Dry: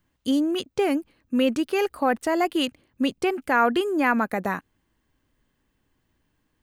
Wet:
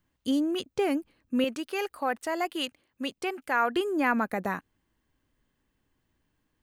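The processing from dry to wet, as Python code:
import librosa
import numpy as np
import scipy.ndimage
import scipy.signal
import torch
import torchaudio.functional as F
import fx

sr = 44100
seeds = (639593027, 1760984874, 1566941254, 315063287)

y = fx.low_shelf(x, sr, hz=350.0, db=-11.5, at=(1.44, 3.76))
y = y * 10.0 ** (-4.0 / 20.0)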